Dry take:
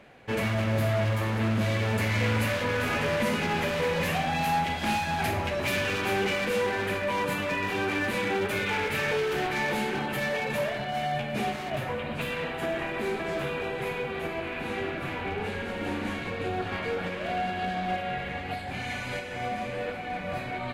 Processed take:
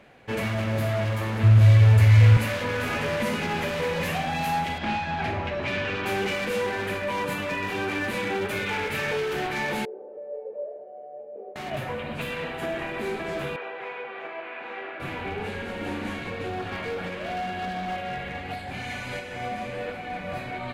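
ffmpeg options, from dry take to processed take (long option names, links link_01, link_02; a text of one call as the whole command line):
ffmpeg -i in.wav -filter_complex "[0:a]asettb=1/sr,asplit=3[link_01][link_02][link_03];[link_01]atrim=end=1.434[link_04];[link_02]atrim=start=1.43:end=2.37,asetpts=PTS-STARTPTS,afade=type=in:duration=0.004:curve=qsin,afade=type=out:start_time=0.936:duration=0.004:curve=qsin,lowshelf=frequency=140:width_type=q:width=3:gain=9[link_05];[link_03]atrim=start=2.366[link_06];[link_04][link_05]acrossfade=duration=0.004:curve1=hsin:curve2=qsin[link_07];[link_07][link_06]acrossfade=duration=0.004:curve1=qsin:curve2=hsin,asettb=1/sr,asplit=3[link_08][link_09][link_10];[link_08]atrim=end=4.784[link_11];[link_09]atrim=start=4.78:end=6.06,asetpts=PTS-STARTPTS,afade=type=in:duration=0.004:curve=qsin,afade=type=out:start_time=1.276:duration=0.004:curve=qsin,lowpass=3600[link_12];[link_10]atrim=start=6.056[link_13];[link_11][link_12]acrossfade=duration=0.004:curve1=hsin:curve2=qsin[link_14];[link_14][link_13]acrossfade=duration=0.004:curve1=qsin:curve2=hsin,asettb=1/sr,asplit=3[link_15][link_16][link_17];[link_15]atrim=end=9.854[link_18];[link_16]atrim=start=9.85:end=11.56,asetpts=PTS-STARTPTS,afade=type=in:duration=0.004:curve=qsin,afade=type=out:start_time=1.706:duration=0.004:curve=qsin,asuperpass=centerf=490:order=4:qfactor=3[link_19];[link_17]atrim=start=11.556[link_20];[link_18][link_19]acrossfade=duration=0.004:curve1=hsin:curve2=qsin[link_21];[link_21][link_20]acrossfade=duration=0.004:curve1=qsin:curve2=hsin,asettb=1/sr,asplit=3[link_22][link_23][link_24];[link_22]atrim=end=13.564[link_25];[link_23]atrim=start=13.56:end=15,asetpts=PTS-STARTPTS,afade=type=in:duration=0.004:curve=qsin,afade=type=out:start_time=1.436:duration=0.004:curve=qsin,highpass=580,lowpass=2400[link_26];[link_24]atrim=start=14.996[link_27];[link_25][link_26]acrossfade=duration=0.004:curve1=hsin:curve2=qsin[link_28];[link_28][link_27]acrossfade=duration=0.004:curve1=qsin:curve2=hsin,asettb=1/sr,asplit=3[link_29][link_30][link_31];[link_29]atrim=end=16.364[link_32];[link_30]atrim=start=16.36:end=19.03,asetpts=PTS-STARTPTS,afade=type=in:duration=0.004:curve=qsin,afade=type=out:start_time=2.666:duration=0.004:curve=qsin,asoftclip=type=hard:threshold=-26.5dB[link_33];[link_31]atrim=start=19.026[link_34];[link_32][link_33]acrossfade=duration=0.004:curve1=hsin:curve2=qsin[link_35];[link_35][link_34]acrossfade=duration=0.004:curve1=qsin:curve2=hsin" out.wav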